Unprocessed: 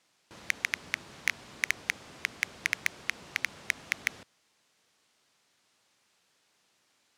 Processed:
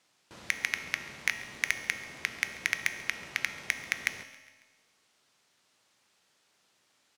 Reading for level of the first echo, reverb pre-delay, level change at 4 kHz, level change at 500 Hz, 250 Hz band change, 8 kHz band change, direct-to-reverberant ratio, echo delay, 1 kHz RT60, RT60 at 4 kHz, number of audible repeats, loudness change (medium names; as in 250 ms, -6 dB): -21.0 dB, 4 ms, +0.5 dB, +0.5 dB, +0.5 dB, +0.5 dB, 8.0 dB, 137 ms, 1.3 s, 1.3 s, 2, +0.5 dB